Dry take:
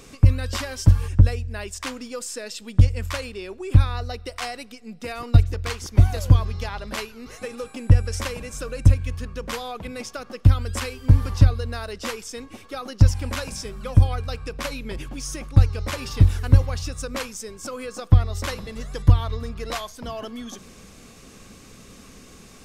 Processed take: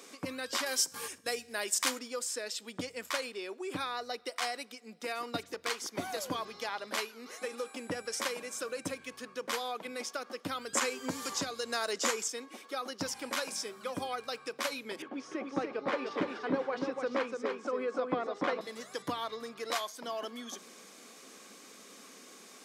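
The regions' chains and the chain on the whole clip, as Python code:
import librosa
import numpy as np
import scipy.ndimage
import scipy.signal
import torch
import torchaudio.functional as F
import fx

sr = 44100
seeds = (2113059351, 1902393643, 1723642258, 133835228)

y = fx.chain(x, sr, fx.high_shelf(hz=5500.0, db=10.5),
    fx.over_compress(threshold_db=-20.0, ratio=-0.5),
    fx.comb_fb(f0_hz=52.0, decay_s=0.85, harmonics='all', damping=0.0, mix_pct=30), at=(0.66, 1.99))
y = fx.chain(y, sr, fx.peak_eq(hz=7000.0, db=11.5, octaves=0.43),
    fx.band_squash(depth_pct=70), at=(10.73, 12.28))
y = fx.chain(y, sr, fx.bandpass_edges(low_hz=280.0, high_hz=2300.0),
    fx.low_shelf(hz=470.0, db=12.0),
    fx.echo_single(ms=293, db=-4.5), at=(15.02, 18.61))
y = scipy.signal.sosfilt(scipy.signal.butter(4, 230.0, 'highpass', fs=sr, output='sos'), y)
y = fx.low_shelf(y, sr, hz=290.0, db=-8.5)
y = fx.notch(y, sr, hz=2700.0, q=17.0)
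y = F.gain(torch.from_numpy(y), -3.0).numpy()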